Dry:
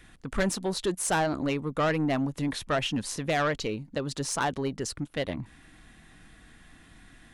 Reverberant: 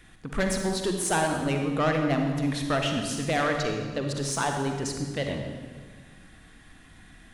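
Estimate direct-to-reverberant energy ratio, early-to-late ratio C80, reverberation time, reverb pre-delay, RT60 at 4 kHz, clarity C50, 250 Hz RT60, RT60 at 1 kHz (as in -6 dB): 3.0 dB, 5.5 dB, 1.6 s, 39 ms, 1.2 s, 3.5 dB, 1.8 s, 1.4 s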